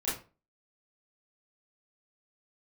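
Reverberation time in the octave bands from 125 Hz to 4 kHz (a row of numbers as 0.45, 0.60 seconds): 0.35, 0.35, 0.35, 0.35, 0.30, 0.25 seconds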